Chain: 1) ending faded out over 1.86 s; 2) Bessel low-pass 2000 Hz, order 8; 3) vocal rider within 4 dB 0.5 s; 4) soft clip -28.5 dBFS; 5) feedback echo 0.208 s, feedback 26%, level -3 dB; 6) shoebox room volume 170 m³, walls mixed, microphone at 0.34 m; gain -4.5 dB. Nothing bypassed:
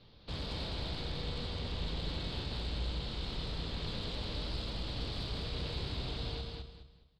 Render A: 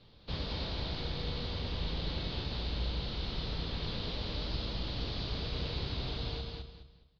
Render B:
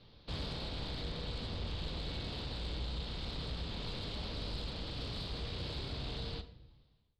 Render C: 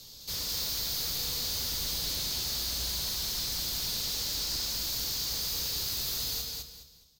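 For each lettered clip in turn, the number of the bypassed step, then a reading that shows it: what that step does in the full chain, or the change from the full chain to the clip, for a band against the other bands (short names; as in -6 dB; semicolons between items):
4, distortion -17 dB; 5, echo-to-direct -1.5 dB to -9.0 dB; 2, 8 kHz band +30.5 dB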